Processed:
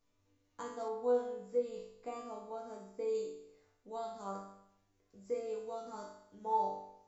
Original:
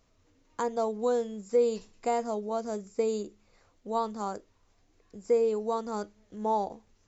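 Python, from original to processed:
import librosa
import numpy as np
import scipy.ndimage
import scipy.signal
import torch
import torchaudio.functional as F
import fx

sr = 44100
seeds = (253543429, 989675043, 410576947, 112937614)

y = fx.resonator_bank(x, sr, root=43, chord='major', decay_s=0.75)
y = fx.high_shelf(y, sr, hz=4000.0, db=-9.5, at=(0.88, 3.15))
y = y * 10.0 ** (8.0 / 20.0)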